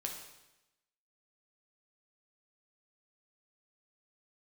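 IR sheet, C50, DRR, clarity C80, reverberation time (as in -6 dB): 5.0 dB, 1.0 dB, 7.5 dB, 0.95 s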